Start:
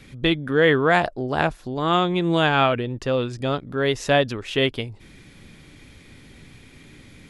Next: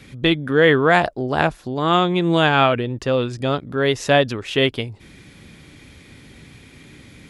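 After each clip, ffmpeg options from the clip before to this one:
ffmpeg -i in.wav -af "highpass=44,volume=3dB" out.wav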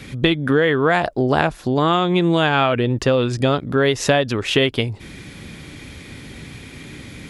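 ffmpeg -i in.wav -af "acompressor=threshold=-20dB:ratio=12,volume=7.5dB" out.wav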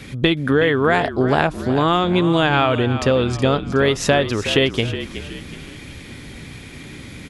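ffmpeg -i in.wav -filter_complex "[0:a]asplit=5[link_01][link_02][link_03][link_04][link_05];[link_02]adelay=369,afreqshift=-42,volume=-11.5dB[link_06];[link_03]adelay=738,afreqshift=-84,volume=-18.6dB[link_07];[link_04]adelay=1107,afreqshift=-126,volume=-25.8dB[link_08];[link_05]adelay=1476,afreqshift=-168,volume=-32.9dB[link_09];[link_01][link_06][link_07][link_08][link_09]amix=inputs=5:normalize=0" out.wav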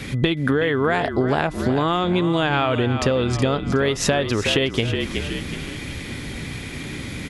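ffmpeg -i in.wav -af "acompressor=threshold=-22dB:ratio=5,aeval=exprs='val(0)+0.00251*sin(2*PI*2000*n/s)':channel_layout=same,volume=5dB" out.wav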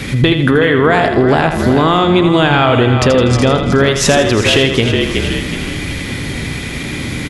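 ffmpeg -i in.wav -af "aecho=1:1:81|162|243|324|405:0.398|0.179|0.0806|0.0363|0.0163,apsyclip=12dB,volume=-3dB" out.wav

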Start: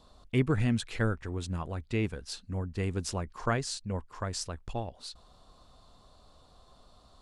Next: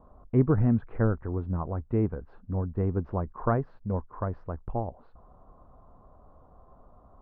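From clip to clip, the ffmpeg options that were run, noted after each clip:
ffmpeg -i in.wav -af "lowpass=frequency=1200:width=0.5412,lowpass=frequency=1200:width=1.3066,volume=4.5dB" out.wav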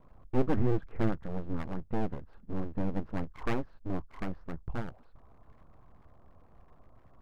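ffmpeg -i in.wav -af "equalizer=frequency=690:width_type=o:width=2.6:gain=-6,aeval=exprs='abs(val(0))':channel_layout=same" out.wav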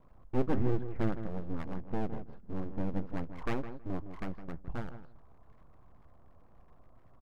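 ffmpeg -i in.wav -filter_complex "[0:a]asplit=2[link_01][link_02];[link_02]adelay=161,lowpass=frequency=1600:poles=1,volume=-10dB,asplit=2[link_03][link_04];[link_04]adelay=161,lowpass=frequency=1600:poles=1,volume=0.18,asplit=2[link_05][link_06];[link_06]adelay=161,lowpass=frequency=1600:poles=1,volume=0.18[link_07];[link_01][link_03][link_05][link_07]amix=inputs=4:normalize=0,volume=-2.5dB" out.wav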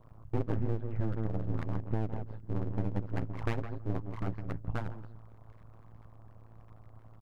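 ffmpeg -i in.wav -af "tremolo=f=110:d=1,acompressor=threshold=-33dB:ratio=6,volume=7.5dB" out.wav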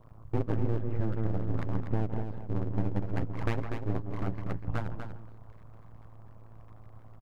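ffmpeg -i in.wav -af "aecho=1:1:243:0.422,volume=2dB" out.wav

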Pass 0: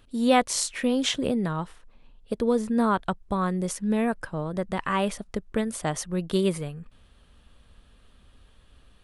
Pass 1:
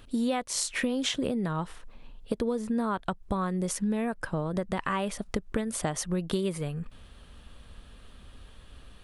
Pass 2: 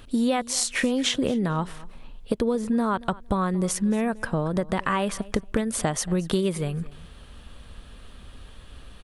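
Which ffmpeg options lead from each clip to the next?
ffmpeg -i in.wav -af "acompressor=threshold=-32dB:ratio=8,volume=6dB" out.wav
ffmpeg -i in.wav -af "aecho=1:1:229|458:0.0944|0.0179,volume=5dB" out.wav

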